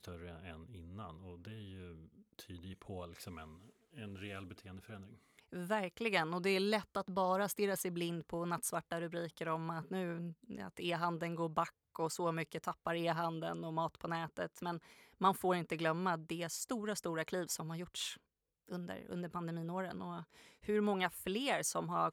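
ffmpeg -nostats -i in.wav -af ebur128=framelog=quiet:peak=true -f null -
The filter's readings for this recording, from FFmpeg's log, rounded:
Integrated loudness:
  I:         -38.9 LUFS
  Threshold: -49.9 LUFS
Loudness range:
  LRA:        13.9 LU
  Threshold: -59.9 LUFS
  LRA low:   -50.7 LUFS
  LRA high:  -36.9 LUFS
True peak:
  Peak:      -17.2 dBFS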